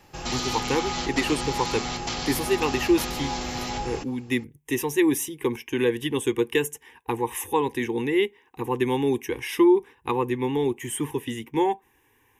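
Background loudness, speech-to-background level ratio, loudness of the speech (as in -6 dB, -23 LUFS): -29.5 LUFS, 3.5 dB, -26.0 LUFS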